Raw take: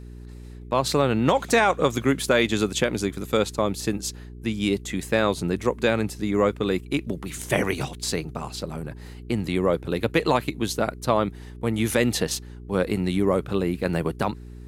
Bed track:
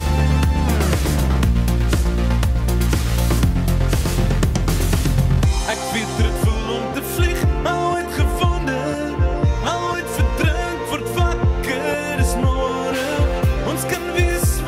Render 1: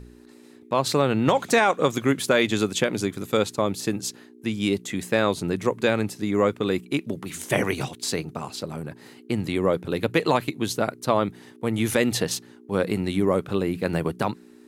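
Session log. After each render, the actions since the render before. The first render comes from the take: de-hum 60 Hz, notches 3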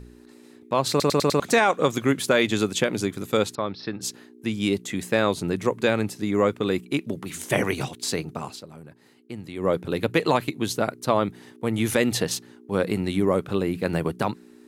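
0.9 stutter in place 0.10 s, 5 plays; 3.55–4.01 rippled Chebyshev low-pass 5500 Hz, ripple 6 dB; 8.48–9.7 dip -10.5 dB, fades 0.14 s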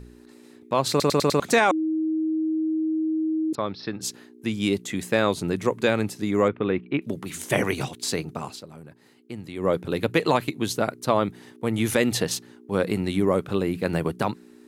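1.71–3.53 bleep 316 Hz -21.5 dBFS; 6.48–7.02 LPF 2800 Hz 24 dB/oct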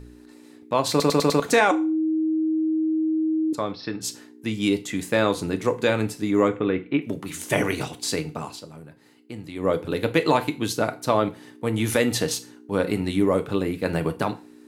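FDN reverb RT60 0.35 s, low-frequency decay 0.75×, high-frequency decay 0.95×, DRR 7.5 dB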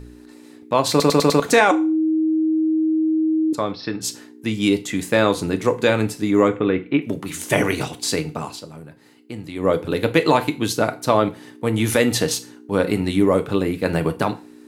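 gain +4 dB; limiter -3 dBFS, peak gain reduction 1 dB

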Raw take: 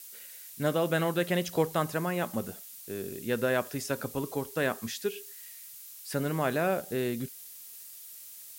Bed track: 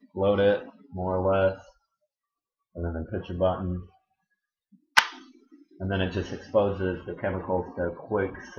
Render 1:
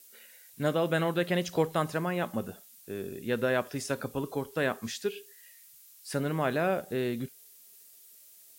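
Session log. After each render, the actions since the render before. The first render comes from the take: noise print and reduce 8 dB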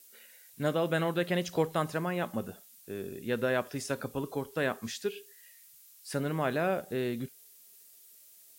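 gain -1.5 dB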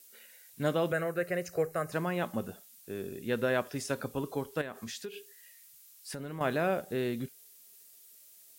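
0.92–1.92 fixed phaser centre 920 Hz, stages 6; 4.61–6.41 compressor, threshold -36 dBFS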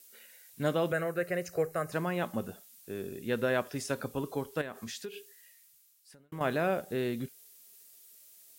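5.17–6.32 fade out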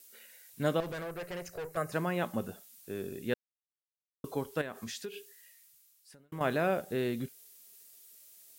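0.8–1.77 tube stage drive 36 dB, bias 0.5; 3.34–4.24 mute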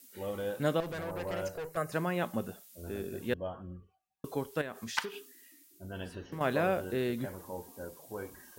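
add bed track -14.5 dB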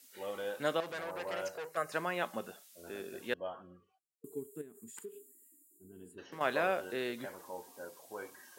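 3.99–6.18 spectral gain 470–6800 Hz -27 dB; weighting filter A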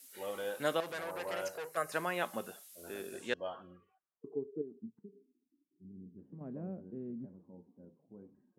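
low-pass sweep 12000 Hz -> 200 Hz, 3.06–4.93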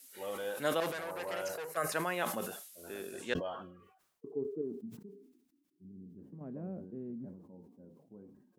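sustainer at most 65 dB/s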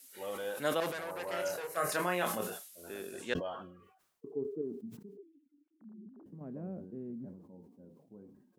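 1.3–2.58 doubler 28 ms -4 dB; 5.17–6.26 sine-wave speech

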